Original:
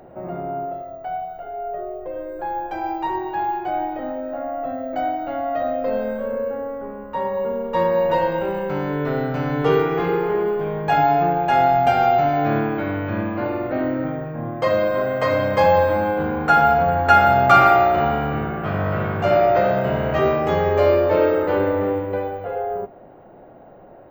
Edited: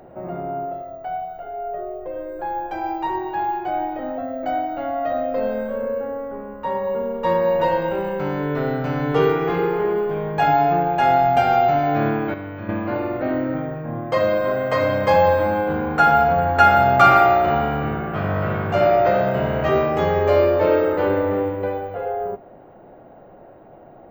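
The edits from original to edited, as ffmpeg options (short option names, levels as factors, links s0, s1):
-filter_complex "[0:a]asplit=4[s0][s1][s2][s3];[s0]atrim=end=4.182[s4];[s1]atrim=start=4.678:end=12.842[s5];[s2]atrim=start=12.838:end=13.192,asetpts=PTS-STARTPTS,volume=0.422[s6];[s3]atrim=start=13.188[s7];[s4][s5]acrossfade=d=0.004:c1=hsin:c2=hsin[s8];[s8][s6]acrossfade=d=0.004:c1=hsin:c2=hsin[s9];[s9][s7]acrossfade=d=0.004:c1=hsin:c2=hsin"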